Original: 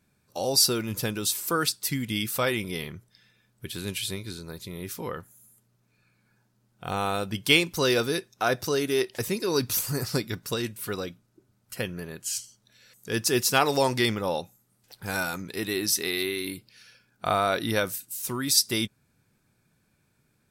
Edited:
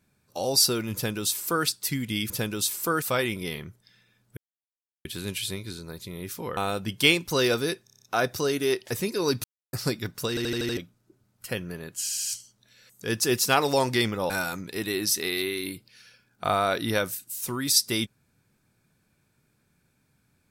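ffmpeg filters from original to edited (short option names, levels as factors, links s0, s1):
-filter_complex "[0:a]asplit=23[s0][s1][s2][s3][s4][s5][s6][s7][s8][s9][s10][s11][s12][s13][s14][s15][s16][s17][s18][s19][s20][s21][s22];[s0]atrim=end=2.302[s23];[s1]atrim=start=0.938:end=1.662[s24];[s2]atrim=start=2.298:end=3.65,asetpts=PTS-STARTPTS,afade=t=out:st=1.348:d=0.004:c=hsin,apad=pad_dur=0.68[s25];[s3]atrim=start=3.65:end=5.172,asetpts=PTS-STARTPTS,afade=t=in:d=0.004:c=hsin[s26];[s4]atrim=start=7.028:end=8.332[s27];[s5]atrim=start=8.298:end=8.332[s28];[s6]atrim=start=8.298:end=8.332[s29];[s7]atrim=start=8.298:end=8.332[s30];[s8]atrim=start=8.298:end=8.332[s31];[s9]atrim=start=8.298:end=8.332[s32];[s10]atrim=start=8.298:end=9.72,asetpts=PTS-STARTPTS,afade=t=out:st=1.418:d=0.004:c=hsin[s33];[s11]atrim=start=9.72:end=10.01,asetpts=PTS-STARTPTS,volume=0[s34];[s12]atrim=start=10.01:end=10.652,asetpts=PTS-STARTPTS,afade=t=in:d=0.004:c=hsin[s35];[s13]atrim=start=10.568:end=10.652[s36];[s14]atrim=start=10.568:end=10.652[s37];[s15]atrim=start=10.568:end=10.652[s38];[s16]atrim=start=10.568:end=10.652[s39];[s17]atrim=start=10.568:end=10.652[s40];[s18]atrim=start=11.048:end=12.372[s41];[s19]atrim=start=12.288:end=12.372[s42];[s20]atrim=start=12.288:end=12.372[s43];[s21]atrim=start=12.288:end=14.342[s44];[s22]atrim=start=15.108[s45];[s23][s24]acrossfade=d=0.004:c1=hsin:c2=hsin[s46];[s25][s26]concat=n=2:v=0:a=1[s47];[s46][s47]acrossfade=d=0.004:c1=hsin:c2=hsin[s48];[s48][s27]acrossfade=d=0.004:c1=hsin:c2=hsin[s49];[s49][s28]acrossfade=d=0.004:c1=hsin:c2=hsin[s50];[s50][s29]acrossfade=d=0.004:c1=hsin:c2=hsin[s51];[s51][s30]acrossfade=d=0.004:c1=hsin:c2=hsin[s52];[s52][s31]acrossfade=d=0.004:c1=hsin:c2=hsin[s53];[s53][s32]acrossfade=d=0.004:c1=hsin:c2=hsin[s54];[s33][s34][s35]concat=n=3:v=0:a=1[s55];[s54][s55]acrossfade=d=0.004:c1=hsin:c2=hsin[s56];[s56][s36]acrossfade=d=0.004:c1=hsin:c2=hsin[s57];[s57][s37]acrossfade=d=0.004:c1=hsin:c2=hsin[s58];[s58][s38]acrossfade=d=0.004:c1=hsin:c2=hsin[s59];[s59][s39]acrossfade=d=0.004:c1=hsin:c2=hsin[s60];[s60][s40]acrossfade=d=0.004:c1=hsin:c2=hsin[s61];[s61][s41]acrossfade=d=0.004:c1=hsin:c2=hsin[s62];[s62][s42]acrossfade=d=0.004:c1=hsin:c2=hsin[s63];[s63][s43]acrossfade=d=0.004:c1=hsin:c2=hsin[s64];[s64][s44]acrossfade=d=0.004:c1=hsin:c2=hsin[s65];[s65][s45]acrossfade=d=0.004:c1=hsin:c2=hsin"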